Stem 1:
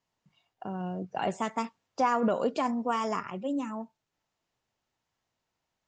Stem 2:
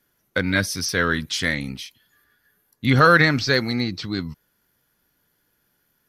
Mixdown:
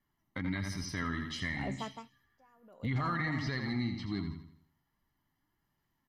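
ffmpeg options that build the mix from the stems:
-filter_complex "[0:a]aeval=exprs='val(0)*pow(10,-32*(0.5-0.5*cos(2*PI*0.73*n/s))/20)':c=same,adelay=400,volume=0.376[s0];[1:a]lowpass=f=1600:p=1,aecho=1:1:1:0.81,flanger=delay=1.6:depth=2.4:regen=60:speed=1.4:shape=triangular,volume=0.531,asplit=2[s1][s2];[s2]volume=0.398,aecho=0:1:83|166|249|332|415|498:1|0.42|0.176|0.0741|0.0311|0.0131[s3];[s0][s1][s3]amix=inputs=3:normalize=0,alimiter=level_in=1.12:limit=0.0631:level=0:latency=1:release=116,volume=0.891"

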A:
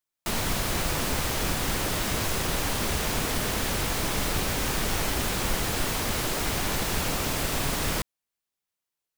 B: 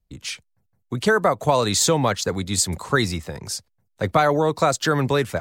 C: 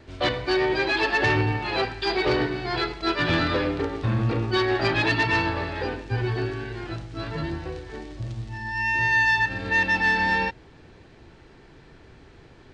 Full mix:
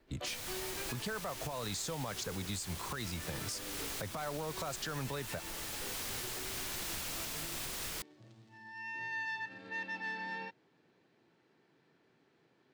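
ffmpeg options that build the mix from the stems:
-filter_complex "[0:a]tiltshelf=f=1500:g=-5.5,volume=0.237[s0];[1:a]equalizer=f=350:w=1.5:g=-5,volume=0.891[s1];[2:a]highpass=f=150:w=0.5412,highpass=f=150:w=1.3066,volume=0.119[s2];[s1][s2]amix=inputs=2:normalize=0,acompressor=threshold=0.0501:ratio=6,volume=1[s3];[s0][s3]amix=inputs=2:normalize=0,alimiter=level_in=1.78:limit=0.0631:level=0:latency=1:release=340,volume=0.562"

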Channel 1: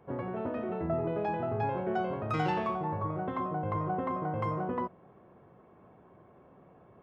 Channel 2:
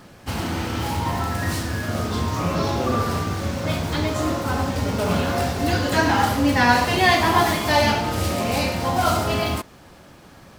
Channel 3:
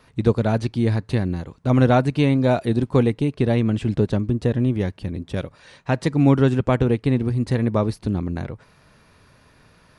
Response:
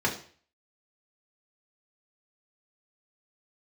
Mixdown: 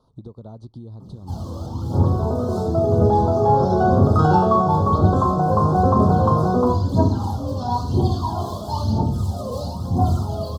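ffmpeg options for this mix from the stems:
-filter_complex "[0:a]equalizer=f=1500:w=3.7:g=11,dynaudnorm=f=310:g=11:m=1.88,adelay=1850,volume=1.19,asplit=2[s0][s1];[s1]volume=0.501[s2];[1:a]lowshelf=f=320:g=8.5,aphaser=in_gain=1:out_gain=1:delay=2:decay=0.76:speed=1:type=triangular,adelay=1000,volume=0.178,asplit=2[s3][s4];[s4]volume=0.398[s5];[2:a]lowpass=f=2700:p=1,asubboost=boost=2:cutoff=210,acompressor=threshold=0.0708:ratio=3,volume=0.473,asplit=2[s6][s7];[s7]apad=whole_len=510807[s8];[s3][s8]sidechaincompress=threshold=0.00631:ratio=8:attack=16:release=497[s9];[s9][s6]amix=inputs=2:normalize=0,acompressor=threshold=0.02:ratio=6,volume=1[s10];[3:a]atrim=start_sample=2205[s11];[s2][s5]amix=inputs=2:normalize=0[s12];[s12][s11]afir=irnorm=-1:irlink=0[s13];[s0][s10][s13]amix=inputs=3:normalize=0,asuperstop=centerf=2100:order=8:qfactor=0.89"

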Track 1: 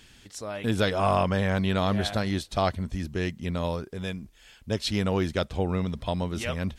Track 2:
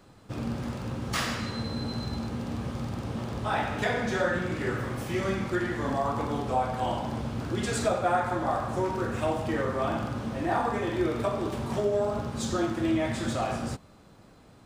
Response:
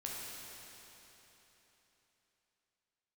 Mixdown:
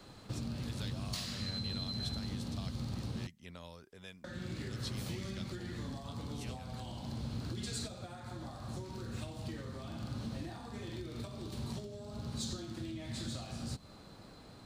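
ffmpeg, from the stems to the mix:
-filter_complex "[0:a]lowshelf=f=490:g=-10.5,volume=0.251[s0];[1:a]equalizer=f=4200:w=4.2:g=9.5,acompressor=threshold=0.02:ratio=6,volume=1,asplit=3[s1][s2][s3];[s1]atrim=end=3.27,asetpts=PTS-STARTPTS,afade=t=out:st=3.266:d=0.004:c=hsin[s4];[s2]atrim=start=3.27:end=4.24,asetpts=PTS-STARTPTS,volume=0[s5];[s3]atrim=start=4.24,asetpts=PTS-STARTPTS,afade=t=in:d=0.004:c=hsin[s6];[s4][s5][s6]concat=n=3:v=0:a=1[s7];[s0][s7]amix=inputs=2:normalize=0,acrossover=split=240|3000[s8][s9][s10];[s9]acompressor=threshold=0.00355:ratio=10[s11];[s8][s11][s10]amix=inputs=3:normalize=0"

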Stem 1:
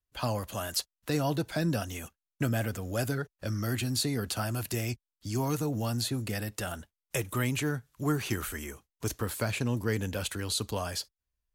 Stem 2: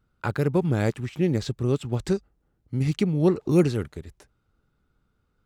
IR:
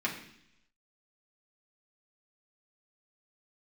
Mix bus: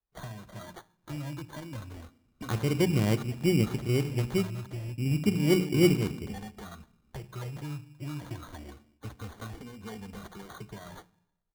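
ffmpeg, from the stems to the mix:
-filter_complex "[0:a]acrossover=split=190|1700|4900[s0][s1][s2][s3];[s0]acompressor=threshold=0.0141:ratio=4[s4];[s1]acompressor=threshold=0.00447:ratio=4[s5];[s2]acompressor=threshold=0.00794:ratio=4[s6];[s3]acompressor=threshold=0.00355:ratio=4[s7];[s4][s5][s6][s7]amix=inputs=4:normalize=0,asplit=2[s8][s9];[s9]adelay=2.4,afreqshift=-0.29[s10];[s8][s10]amix=inputs=2:normalize=1,volume=1,asplit=3[s11][s12][s13];[s12]volume=0.188[s14];[1:a]lowshelf=f=370:g=6,adelay=2250,volume=0.75,asplit=2[s15][s16];[s16]volume=0.126[s17];[s13]apad=whole_len=339887[s18];[s15][s18]sidechaincompress=threshold=0.00562:ratio=4:attack=27:release=1180[s19];[2:a]atrim=start_sample=2205[s20];[s14][s17]amix=inputs=2:normalize=0[s21];[s21][s20]afir=irnorm=-1:irlink=0[s22];[s11][s19][s22]amix=inputs=3:normalize=0,highshelf=f=4700:g=-10,acrusher=samples=17:mix=1:aa=0.000001"

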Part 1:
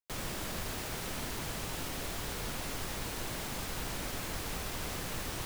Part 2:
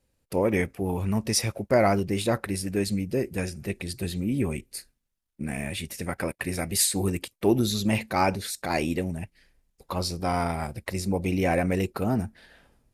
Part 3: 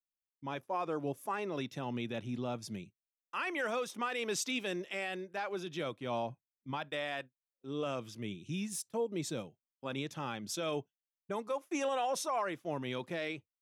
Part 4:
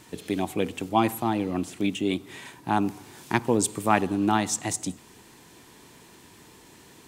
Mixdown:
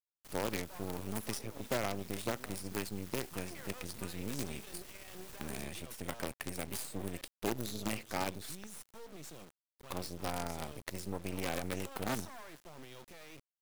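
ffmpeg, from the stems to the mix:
-filter_complex "[0:a]adelay=150,volume=0.211[s0];[1:a]volume=0.422,asplit=3[s1][s2][s3];[s1]atrim=end=8.64,asetpts=PTS-STARTPTS,afade=t=out:st=8.636:d=0.004:c=hsin[s4];[s2]atrim=start=8.64:end=9.53,asetpts=PTS-STARTPTS,volume=0[s5];[s3]atrim=start=9.53,asetpts=PTS-STARTPTS,afade=t=in:d=0.004:c=hsin[s6];[s4][s5][s6]concat=n=3:v=0:a=1[s7];[2:a]highshelf=f=6700:g=8.5,alimiter=level_in=3.55:limit=0.0631:level=0:latency=1:release=16,volume=0.282,volume=0.631,asplit=2[s8][s9];[s9]volume=0.0891,aecho=0:1:80|160|240|320|400|480|560:1|0.49|0.24|0.118|0.0576|0.0282|0.0138[s10];[s0][s7][s8][s10]amix=inputs=4:normalize=0,highshelf=f=6400:g=5.5,acrossover=split=150|760[s11][s12][s13];[s11]acompressor=threshold=0.00398:ratio=4[s14];[s12]acompressor=threshold=0.0178:ratio=4[s15];[s13]acompressor=threshold=0.01:ratio=4[s16];[s14][s15][s16]amix=inputs=3:normalize=0,acrusher=bits=6:dc=4:mix=0:aa=0.000001"

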